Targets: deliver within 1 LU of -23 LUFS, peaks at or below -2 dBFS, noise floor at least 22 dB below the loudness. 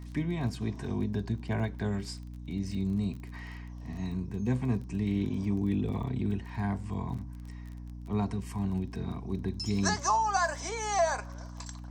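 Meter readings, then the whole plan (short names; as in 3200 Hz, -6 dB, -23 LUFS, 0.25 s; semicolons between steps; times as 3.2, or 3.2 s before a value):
ticks 24/s; hum 60 Hz; harmonics up to 300 Hz; hum level -40 dBFS; loudness -32.0 LUFS; peak -14.5 dBFS; loudness target -23.0 LUFS
-> de-click; de-hum 60 Hz, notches 5; gain +9 dB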